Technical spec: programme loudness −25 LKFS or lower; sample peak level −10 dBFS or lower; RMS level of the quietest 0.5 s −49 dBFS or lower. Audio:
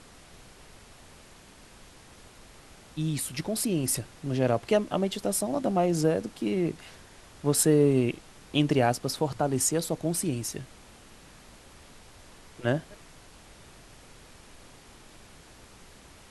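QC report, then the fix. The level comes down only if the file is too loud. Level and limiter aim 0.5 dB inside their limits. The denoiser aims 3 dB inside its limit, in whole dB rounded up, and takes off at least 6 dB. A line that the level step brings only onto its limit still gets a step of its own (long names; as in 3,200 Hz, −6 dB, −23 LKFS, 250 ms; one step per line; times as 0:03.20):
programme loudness −27.5 LKFS: in spec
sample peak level −9.5 dBFS: out of spec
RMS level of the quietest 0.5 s −52 dBFS: in spec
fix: brickwall limiter −10.5 dBFS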